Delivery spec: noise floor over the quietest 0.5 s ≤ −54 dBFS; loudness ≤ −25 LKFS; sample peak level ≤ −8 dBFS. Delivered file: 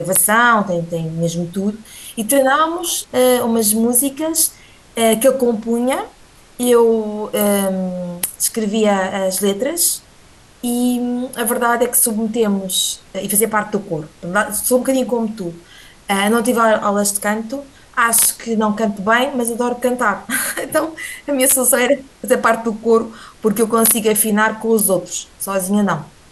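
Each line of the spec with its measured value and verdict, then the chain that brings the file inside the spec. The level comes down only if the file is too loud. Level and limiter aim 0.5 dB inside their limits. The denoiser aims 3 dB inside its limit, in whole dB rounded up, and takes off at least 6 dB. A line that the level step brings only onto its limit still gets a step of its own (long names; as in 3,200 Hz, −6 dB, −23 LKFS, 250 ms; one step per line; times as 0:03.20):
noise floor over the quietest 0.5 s −46 dBFS: out of spec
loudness −16.5 LKFS: out of spec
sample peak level −2.0 dBFS: out of spec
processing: level −9 dB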